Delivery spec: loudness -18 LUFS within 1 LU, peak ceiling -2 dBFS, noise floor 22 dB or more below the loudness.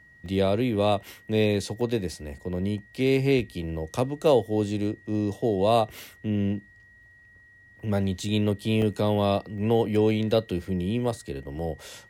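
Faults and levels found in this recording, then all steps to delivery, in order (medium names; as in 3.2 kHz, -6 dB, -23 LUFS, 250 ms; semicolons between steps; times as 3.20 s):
dropouts 5; longest dropout 1.8 ms; steady tone 1.9 kHz; tone level -52 dBFS; loudness -26.0 LUFS; peak level -9.0 dBFS; loudness target -18.0 LUFS
-> interpolate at 0.26/1.81/8.20/8.82/9.58 s, 1.8 ms; band-stop 1.9 kHz, Q 30; trim +8 dB; peak limiter -2 dBFS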